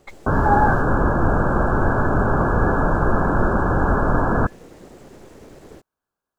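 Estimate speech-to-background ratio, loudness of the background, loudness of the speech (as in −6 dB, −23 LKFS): −2.5 dB, −20.0 LKFS, −22.5 LKFS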